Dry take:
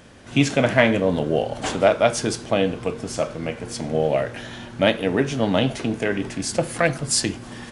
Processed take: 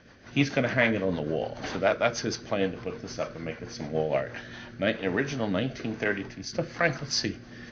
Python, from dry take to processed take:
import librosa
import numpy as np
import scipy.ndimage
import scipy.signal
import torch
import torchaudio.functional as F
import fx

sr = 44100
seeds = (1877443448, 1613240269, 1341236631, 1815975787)

y = scipy.signal.sosfilt(scipy.signal.cheby1(6, 6, 6300.0, 'lowpass', fs=sr, output='sos'), x)
y = fx.rotary_switch(y, sr, hz=6.7, then_hz=1.1, switch_at_s=3.97)
y = fx.band_widen(y, sr, depth_pct=70, at=(6.04, 6.53))